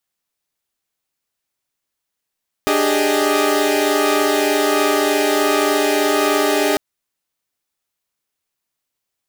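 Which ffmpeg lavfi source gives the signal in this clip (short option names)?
-f lavfi -i "aevalsrc='0.133*((2*mod(293.66*t,1)-1)+(2*mod(392*t,1)-1)+(2*mod(415.3*t,1)-1)+(2*mod(622.25*t,1)-1))':d=4.1:s=44100"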